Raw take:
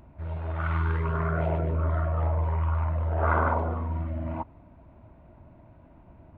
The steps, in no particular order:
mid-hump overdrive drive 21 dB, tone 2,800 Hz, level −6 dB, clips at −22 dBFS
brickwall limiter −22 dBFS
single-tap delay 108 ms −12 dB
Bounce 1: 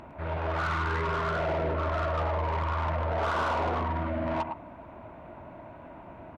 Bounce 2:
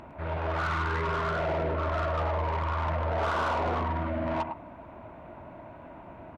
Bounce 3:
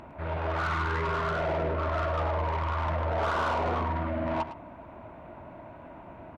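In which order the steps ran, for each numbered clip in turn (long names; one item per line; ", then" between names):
single-tap delay, then brickwall limiter, then mid-hump overdrive
brickwall limiter, then single-tap delay, then mid-hump overdrive
brickwall limiter, then mid-hump overdrive, then single-tap delay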